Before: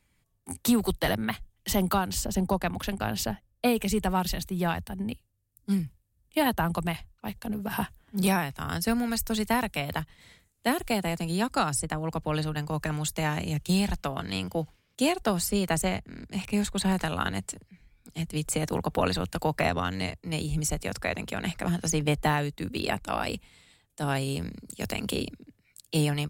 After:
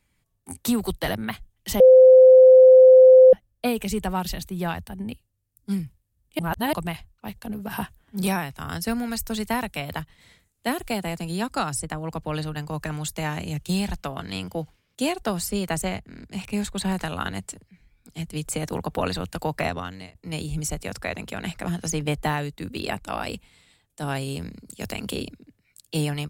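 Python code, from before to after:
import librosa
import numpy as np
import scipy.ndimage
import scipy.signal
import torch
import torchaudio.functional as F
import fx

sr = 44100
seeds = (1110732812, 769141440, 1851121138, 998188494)

y = fx.edit(x, sr, fx.bleep(start_s=1.8, length_s=1.53, hz=516.0, db=-7.0),
    fx.reverse_span(start_s=6.39, length_s=0.34),
    fx.fade_out_to(start_s=19.64, length_s=0.51, floor_db=-19.0), tone=tone)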